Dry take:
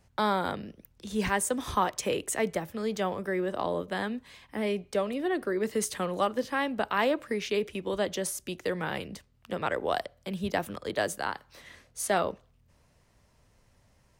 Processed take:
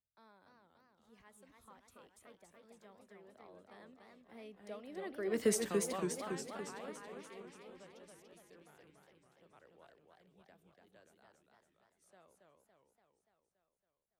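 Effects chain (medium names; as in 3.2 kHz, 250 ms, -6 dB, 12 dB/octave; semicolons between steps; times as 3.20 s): Doppler pass-by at 5.46 s, 18 m/s, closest 1.5 m; modulated delay 284 ms, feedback 62%, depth 187 cents, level -3.5 dB; trim -1 dB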